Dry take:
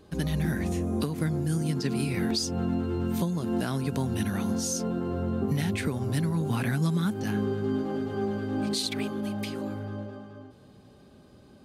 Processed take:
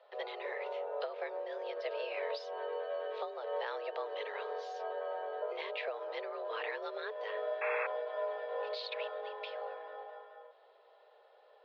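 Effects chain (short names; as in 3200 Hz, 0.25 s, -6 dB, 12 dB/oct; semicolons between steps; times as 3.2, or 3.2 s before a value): mistuned SSB +220 Hz 280–3600 Hz; painted sound noise, 7.61–7.87, 720–2700 Hz -32 dBFS; gain -5 dB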